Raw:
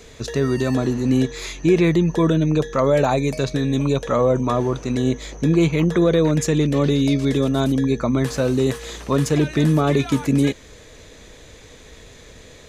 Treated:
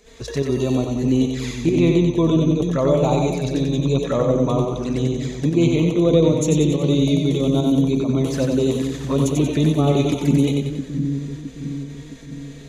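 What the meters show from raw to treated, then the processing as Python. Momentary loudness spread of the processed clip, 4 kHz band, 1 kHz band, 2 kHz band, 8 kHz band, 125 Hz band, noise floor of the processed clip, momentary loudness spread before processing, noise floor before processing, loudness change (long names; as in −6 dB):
11 LU, 0.0 dB, −3.0 dB, −5.5 dB, 0.0 dB, +1.0 dB, −37 dBFS, 6 LU, −44 dBFS, +0.5 dB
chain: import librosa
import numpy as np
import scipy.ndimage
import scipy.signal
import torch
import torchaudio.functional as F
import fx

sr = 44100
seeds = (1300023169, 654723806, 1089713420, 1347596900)

y = fx.env_flanger(x, sr, rest_ms=5.3, full_db=-17.0)
y = fx.volume_shaper(y, sr, bpm=142, per_beat=1, depth_db=-9, release_ms=64.0, shape='slow start')
y = fx.echo_split(y, sr, split_hz=300.0, low_ms=664, high_ms=92, feedback_pct=52, wet_db=-4)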